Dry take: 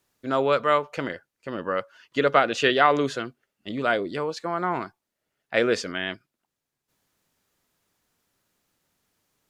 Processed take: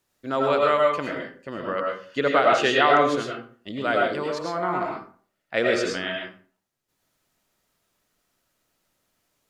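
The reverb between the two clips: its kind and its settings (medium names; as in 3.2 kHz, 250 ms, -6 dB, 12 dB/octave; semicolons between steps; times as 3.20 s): algorithmic reverb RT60 0.44 s, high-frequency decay 0.65×, pre-delay 65 ms, DRR -1 dB; trim -2 dB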